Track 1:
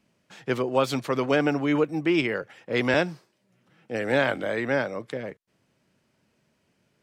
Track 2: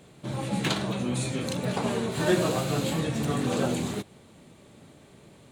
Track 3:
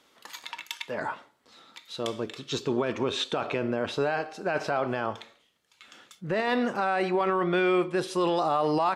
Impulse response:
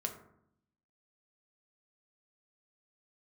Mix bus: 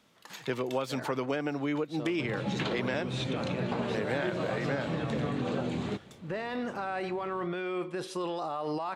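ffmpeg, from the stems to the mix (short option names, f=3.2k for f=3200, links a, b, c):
-filter_complex "[0:a]volume=-1dB[a];[1:a]lowpass=3.5k,adelay=1950,volume=0dB[b];[2:a]alimiter=limit=-20dB:level=0:latency=1:release=13,volume=-5dB[c];[a][b][c]amix=inputs=3:normalize=0,acompressor=threshold=-28dB:ratio=6"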